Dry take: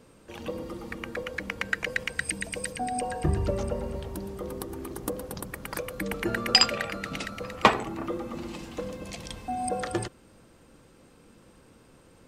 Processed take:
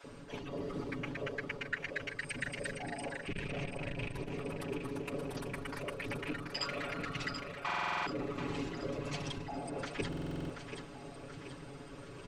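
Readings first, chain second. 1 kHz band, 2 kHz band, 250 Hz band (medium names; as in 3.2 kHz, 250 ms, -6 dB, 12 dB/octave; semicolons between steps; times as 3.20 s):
-10.5 dB, -7.0 dB, -6.0 dB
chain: rattle on loud lows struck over -31 dBFS, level -18 dBFS; reverse; compression 6:1, threshold -43 dBFS, peak gain reduction 28 dB; reverse; distance through air 75 m; bands offset in time highs, lows 40 ms, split 650 Hz; whisper effect; comb 7.1 ms, depth 78%; two-band feedback delay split 350 Hz, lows 163 ms, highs 732 ms, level -7.5 dB; buffer glitch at 7.65/10.08 s, samples 2048, times 8; transformer saturation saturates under 150 Hz; trim +5.5 dB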